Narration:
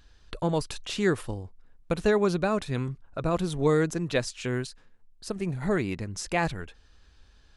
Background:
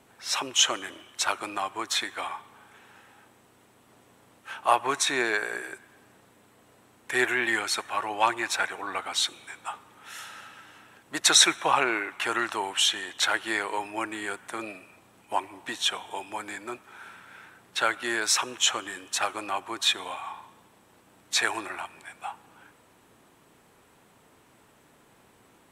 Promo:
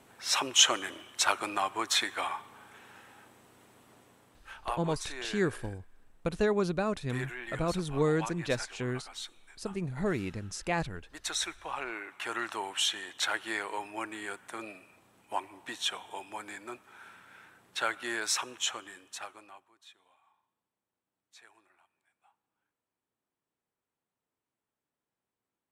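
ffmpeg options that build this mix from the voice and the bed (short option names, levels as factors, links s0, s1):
-filter_complex "[0:a]adelay=4350,volume=0.596[s0];[1:a]volume=2.99,afade=t=out:st=3.79:d=0.98:silence=0.16788,afade=t=in:st=11.69:d=0.86:silence=0.334965,afade=t=out:st=18.25:d=1.46:silence=0.0501187[s1];[s0][s1]amix=inputs=2:normalize=0"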